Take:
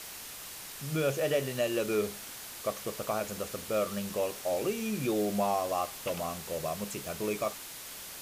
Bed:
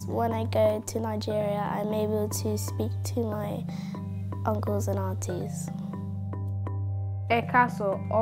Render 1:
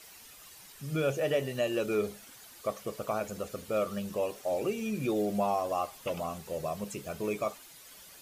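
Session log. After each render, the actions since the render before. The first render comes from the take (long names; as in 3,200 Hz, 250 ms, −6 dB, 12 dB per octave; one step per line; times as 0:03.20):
broadband denoise 11 dB, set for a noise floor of −44 dBFS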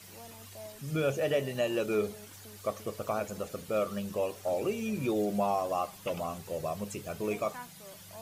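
mix in bed −23.5 dB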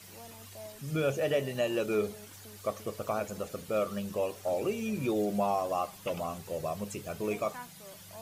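no processing that can be heard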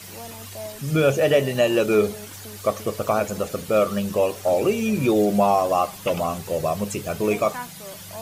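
level +11 dB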